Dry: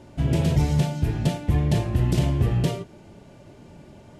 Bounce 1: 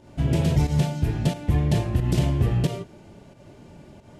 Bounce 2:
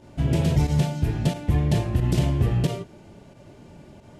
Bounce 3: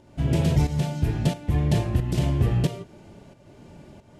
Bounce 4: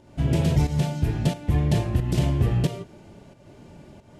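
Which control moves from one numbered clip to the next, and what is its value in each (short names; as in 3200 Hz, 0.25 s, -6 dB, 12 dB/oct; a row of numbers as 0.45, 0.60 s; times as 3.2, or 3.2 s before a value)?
pump, release: 131, 66, 470, 310 ms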